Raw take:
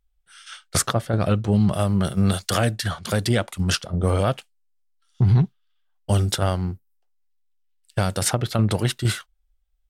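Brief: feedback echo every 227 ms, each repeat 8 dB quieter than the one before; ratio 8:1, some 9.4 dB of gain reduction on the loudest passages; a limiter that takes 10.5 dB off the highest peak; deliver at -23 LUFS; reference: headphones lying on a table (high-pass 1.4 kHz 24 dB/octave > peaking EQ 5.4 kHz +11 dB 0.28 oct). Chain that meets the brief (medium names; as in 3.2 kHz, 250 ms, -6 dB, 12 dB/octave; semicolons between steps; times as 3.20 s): compression 8:1, threshold -23 dBFS; peak limiter -20 dBFS; high-pass 1.4 kHz 24 dB/octave; peaking EQ 5.4 kHz +11 dB 0.28 oct; feedback delay 227 ms, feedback 40%, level -8 dB; trim +11.5 dB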